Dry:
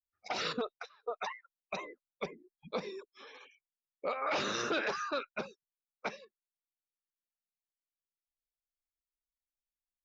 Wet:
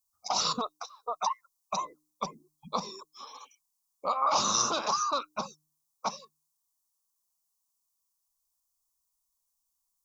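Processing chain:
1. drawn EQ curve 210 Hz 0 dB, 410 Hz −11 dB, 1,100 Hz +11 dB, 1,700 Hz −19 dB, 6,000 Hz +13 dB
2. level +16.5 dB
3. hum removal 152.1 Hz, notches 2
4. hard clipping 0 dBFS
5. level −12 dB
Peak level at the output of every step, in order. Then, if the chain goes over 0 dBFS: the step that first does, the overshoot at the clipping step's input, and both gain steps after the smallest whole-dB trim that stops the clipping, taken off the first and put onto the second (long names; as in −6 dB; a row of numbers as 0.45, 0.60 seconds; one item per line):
−18.0, −1.5, −1.5, −1.5, −13.5 dBFS
no step passes full scale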